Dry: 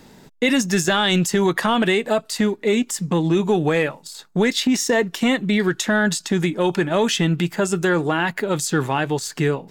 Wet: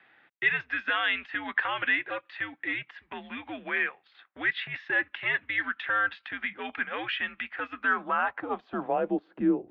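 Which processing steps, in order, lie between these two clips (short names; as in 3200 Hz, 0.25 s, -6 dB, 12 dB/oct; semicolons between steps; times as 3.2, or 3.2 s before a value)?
band-pass sweep 2000 Hz -> 480 Hz, 7.67–9.28; mistuned SSB -110 Hz 280–3500 Hz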